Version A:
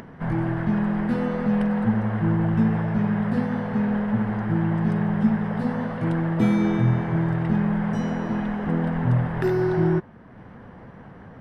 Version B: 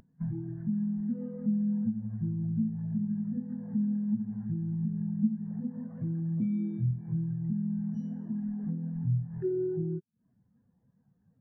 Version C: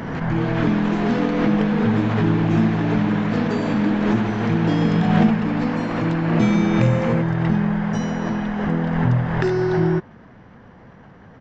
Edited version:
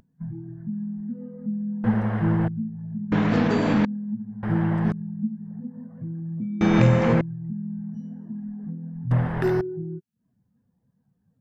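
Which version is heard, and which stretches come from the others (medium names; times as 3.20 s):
B
1.84–2.48 s: from A
3.12–3.85 s: from C
4.43–4.92 s: from A
6.61–7.21 s: from C
9.11–9.61 s: from A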